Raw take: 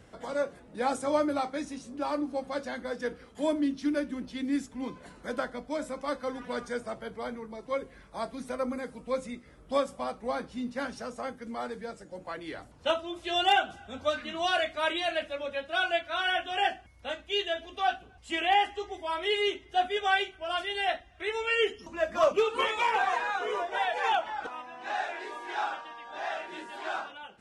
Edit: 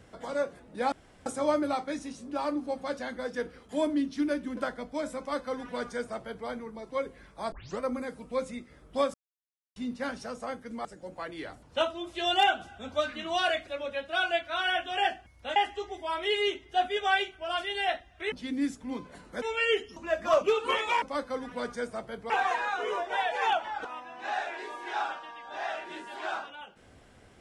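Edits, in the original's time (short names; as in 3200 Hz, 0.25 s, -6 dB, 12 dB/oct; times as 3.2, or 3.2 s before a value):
0.92 insert room tone 0.34 s
4.23–5.33 move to 21.32
5.95–7.23 copy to 22.92
8.28 tape start 0.28 s
9.9–10.52 mute
11.61–11.94 cut
14.76–15.27 cut
17.16–18.56 cut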